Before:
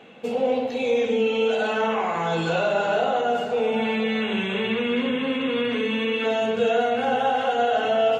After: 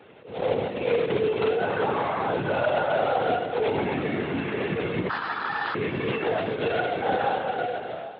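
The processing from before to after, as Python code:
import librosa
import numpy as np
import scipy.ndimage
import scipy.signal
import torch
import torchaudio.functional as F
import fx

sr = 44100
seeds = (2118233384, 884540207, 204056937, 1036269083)

y = fx.fade_out_tail(x, sr, length_s=1.08)
y = scipy.signal.sosfilt(scipy.signal.butter(4, 2200.0, 'lowpass', fs=sr, output='sos'), y)
y = fx.quant_companded(y, sr, bits=4)
y = fx.peak_eq(y, sr, hz=720.0, db=-3.5, octaves=2.0, at=(6.39, 7.02))
y = fx.lpc_vocoder(y, sr, seeds[0], excitation='whisper', order=16)
y = fx.ring_mod(y, sr, carrier_hz=1300.0, at=(5.09, 5.75))
y = scipy.signal.sosfilt(scipy.signal.butter(4, 110.0, 'highpass', fs=sr, output='sos'), y)
y = fx.echo_feedback(y, sr, ms=802, feedback_pct=36, wet_db=-18)
y = fx.attack_slew(y, sr, db_per_s=110.0)
y = y * 10.0 ** (-1.5 / 20.0)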